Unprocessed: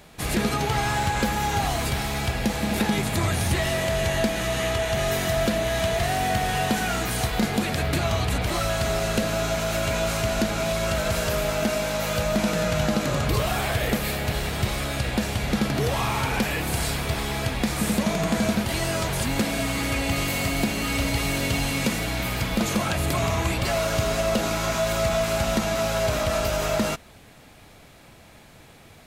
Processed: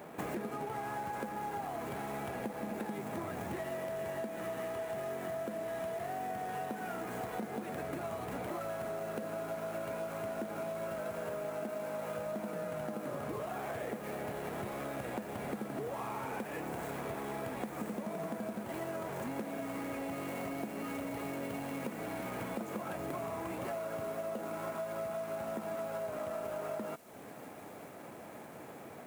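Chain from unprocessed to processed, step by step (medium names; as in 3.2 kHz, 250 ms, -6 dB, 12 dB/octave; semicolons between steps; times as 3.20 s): median filter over 9 samples; high-pass 260 Hz 12 dB/octave; peaking EQ 3.6 kHz -13 dB 2.2 oct; compression 10:1, threshold -43 dBFS, peak gain reduction 21 dB; feedback echo behind a high-pass 942 ms, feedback 83%, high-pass 4.5 kHz, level -9 dB; trim +6.5 dB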